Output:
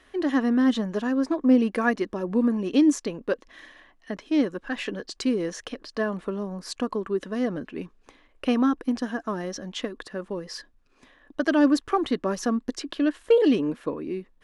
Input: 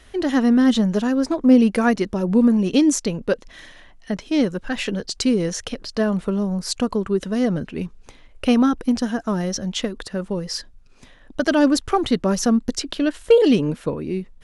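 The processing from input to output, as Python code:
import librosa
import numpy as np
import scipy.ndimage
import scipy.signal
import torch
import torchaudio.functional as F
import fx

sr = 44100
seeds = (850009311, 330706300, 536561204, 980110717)

y = fx.bass_treble(x, sr, bass_db=-10, treble_db=-6)
y = fx.small_body(y, sr, hz=(290.0, 1100.0, 1700.0), ring_ms=25, db=7)
y = y * 10.0 ** (-5.5 / 20.0)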